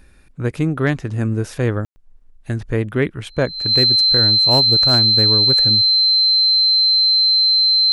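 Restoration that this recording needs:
clipped peaks rebuilt −6 dBFS
notch filter 4,100 Hz, Q 30
ambience match 0:01.85–0:01.96

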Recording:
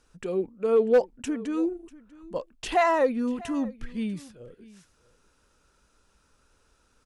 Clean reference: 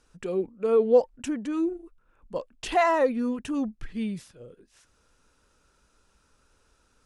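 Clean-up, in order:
clipped peaks rebuilt −13.5 dBFS
echo removal 643 ms −21 dB

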